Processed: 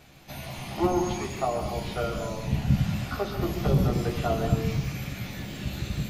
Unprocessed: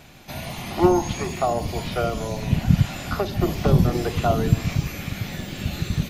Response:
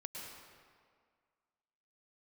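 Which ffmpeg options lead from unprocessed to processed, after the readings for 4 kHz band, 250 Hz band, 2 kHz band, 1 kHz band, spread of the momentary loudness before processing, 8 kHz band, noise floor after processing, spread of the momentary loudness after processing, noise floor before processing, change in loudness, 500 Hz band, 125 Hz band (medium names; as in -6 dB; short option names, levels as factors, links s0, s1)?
-5.0 dB, -5.0 dB, -5.0 dB, -5.0 dB, 12 LU, -5.5 dB, -40 dBFS, 11 LU, -36 dBFS, -5.0 dB, -5.0 dB, -5.0 dB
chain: -filter_complex "[0:a]asplit=2[s0][s1];[1:a]atrim=start_sample=2205,afade=t=out:st=0.31:d=0.01,atrim=end_sample=14112,adelay=15[s2];[s1][s2]afir=irnorm=-1:irlink=0,volume=1.26[s3];[s0][s3]amix=inputs=2:normalize=0,volume=0.422"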